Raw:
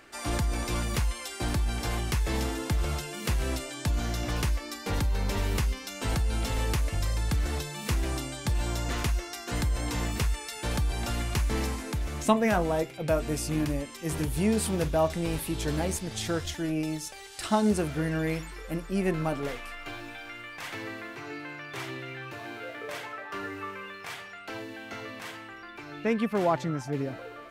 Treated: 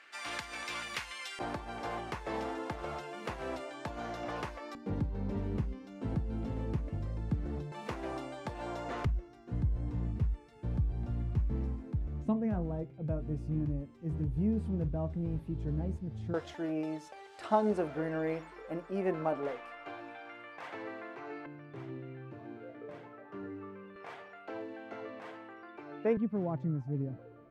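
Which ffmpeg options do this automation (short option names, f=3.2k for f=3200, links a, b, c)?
-af "asetnsamples=n=441:p=0,asendcmd='1.39 bandpass f 750;4.75 bandpass f 200;7.72 bandpass f 650;9.05 bandpass f 110;16.34 bandpass f 640;21.46 bandpass f 200;23.96 bandpass f 510;26.17 bandpass f 130',bandpass=f=2.2k:t=q:w=0.93:csg=0"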